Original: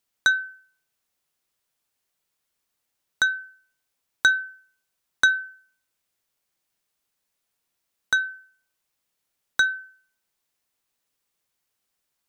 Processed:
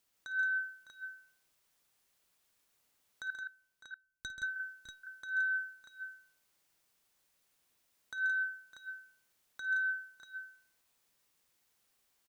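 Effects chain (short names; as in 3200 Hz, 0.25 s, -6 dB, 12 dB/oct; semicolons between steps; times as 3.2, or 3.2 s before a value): 3.3–4.43 passive tone stack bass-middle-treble 10-0-1; negative-ratio compressor -31 dBFS, ratio -1; on a send: tapped delay 53/132/170/606/639 ms -13.5/-9/-5/-13.5/-6.5 dB; on the sum: gain -6.5 dB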